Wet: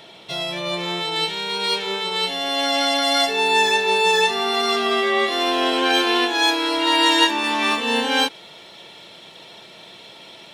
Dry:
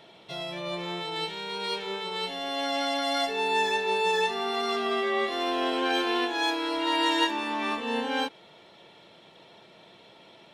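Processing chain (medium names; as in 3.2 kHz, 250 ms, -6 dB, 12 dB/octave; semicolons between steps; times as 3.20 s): treble shelf 2.6 kHz +7 dB, from 7.44 s +11.5 dB; trim +6.5 dB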